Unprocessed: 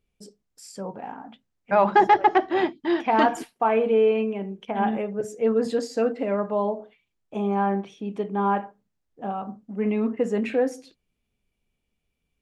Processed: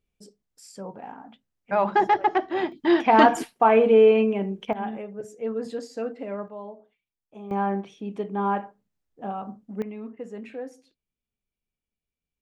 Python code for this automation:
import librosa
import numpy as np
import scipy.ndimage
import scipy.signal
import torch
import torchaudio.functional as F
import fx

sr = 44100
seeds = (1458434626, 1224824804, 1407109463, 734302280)

y = fx.gain(x, sr, db=fx.steps((0.0, -3.5), (2.72, 4.0), (4.73, -7.5), (6.48, -14.0), (7.51, -2.0), (9.82, -13.0)))